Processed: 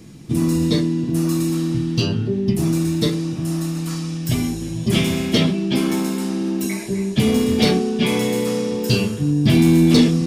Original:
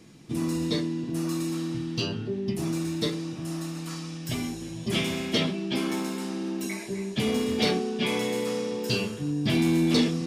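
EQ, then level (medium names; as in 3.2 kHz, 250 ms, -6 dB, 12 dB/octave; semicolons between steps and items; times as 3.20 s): bass shelf 250 Hz +10.5 dB; treble shelf 8.7 kHz +8.5 dB; +4.5 dB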